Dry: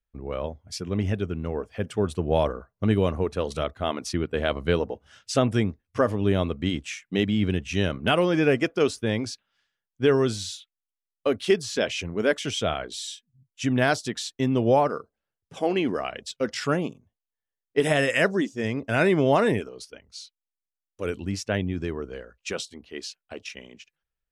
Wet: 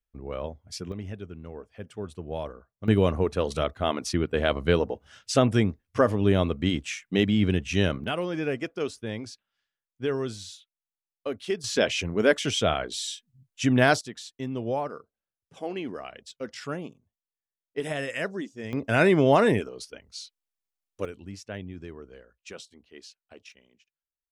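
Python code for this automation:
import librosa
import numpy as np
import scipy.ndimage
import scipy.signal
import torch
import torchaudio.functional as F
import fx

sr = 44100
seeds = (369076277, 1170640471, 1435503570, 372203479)

y = fx.gain(x, sr, db=fx.steps((0.0, -3.0), (0.92, -11.0), (2.88, 1.0), (8.04, -8.0), (11.64, 2.0), (14.01, -9.0), (18.73, 1.0), (21.05, -11.0), (23.52, -17.0)))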